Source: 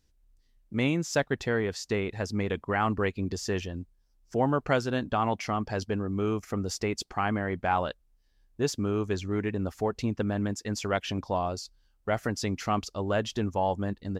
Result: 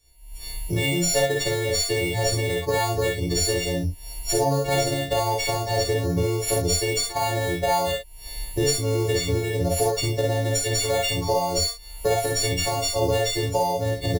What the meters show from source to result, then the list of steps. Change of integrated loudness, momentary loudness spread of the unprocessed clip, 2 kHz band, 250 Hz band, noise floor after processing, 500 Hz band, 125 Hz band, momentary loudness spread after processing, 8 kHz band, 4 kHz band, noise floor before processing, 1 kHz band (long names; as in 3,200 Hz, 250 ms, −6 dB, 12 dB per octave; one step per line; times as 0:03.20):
+6.5 dB, 5 LU, +5.0 dB, +0.5 dB, −40 dBFS, +7.0 dB, +7.0 dB, 5 LU, +15.5 dB, +13.5 dB, −67 dBFS, +4.5 dB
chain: every partial snapped to a pitch grid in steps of 4 semitones
camcorder AGC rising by 65 dB per second
in parallel at −5 dB: sample-rate reduction 5,600 Hz, jitter 0%
on the sum: phaser with its sweep stopped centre 540 Hz, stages 4
double-tracking delay 35 ms −6 dB
ambience of single reflections 51 ms −4.5 dB, 64 ms −5.5 dB